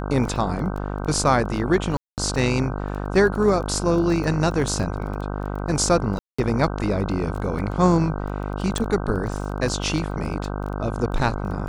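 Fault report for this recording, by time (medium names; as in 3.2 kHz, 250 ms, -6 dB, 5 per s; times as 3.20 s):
buzz 50 Hz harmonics 31 -28 dBFS
crackle 12 per s -29 dBFS
1.97–2.18 s: dropout 208 ms
6.19–6.38 s: dropout 195 ms
8.78 s: pop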